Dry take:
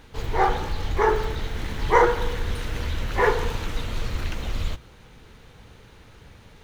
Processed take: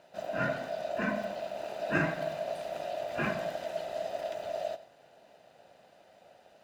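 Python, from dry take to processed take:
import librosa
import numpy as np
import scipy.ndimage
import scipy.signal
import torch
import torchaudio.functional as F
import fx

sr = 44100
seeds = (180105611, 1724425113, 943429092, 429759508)

p1 = x * np.sin(2.0 * np.pi * 640.0 * np.arange(len(x)) / sr)
p2 = fx.notch_comb(p1, sr, f0_hz=1100.0)
p3 = p2 + fx.echo_single(p2, sr, ms=91, db=-15.5, dry=0)
y = p3 * librosa.db_to_amplitude(-7.5)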